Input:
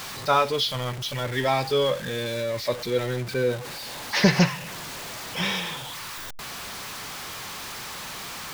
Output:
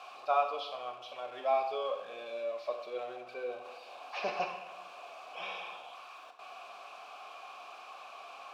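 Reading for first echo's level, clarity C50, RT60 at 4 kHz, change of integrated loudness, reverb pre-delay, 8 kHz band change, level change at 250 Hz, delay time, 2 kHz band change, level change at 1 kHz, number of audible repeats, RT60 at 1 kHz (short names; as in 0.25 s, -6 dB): none, 8.0 dB, 0.70 s, -11.5 dB, 23 ms, -27.5 dB, -27.0 dB, none, -15.0 dB, -6.0 dB, none, 0.90 s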